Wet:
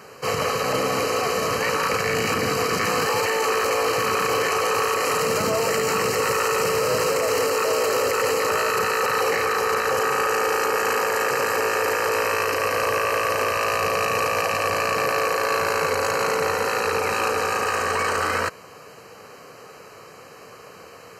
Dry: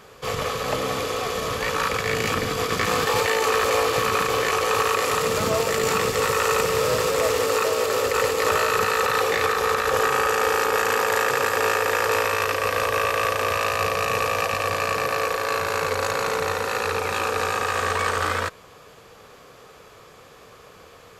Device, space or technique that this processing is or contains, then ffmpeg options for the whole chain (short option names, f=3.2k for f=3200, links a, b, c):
PA system with an anti-feedback notch: -af "highpass=120,asuperstop=centerf=3500:order=20:qfactor=5.1,alimiter=limit=-17.5dB:level=0:latency=1:release=11,volume=4dB"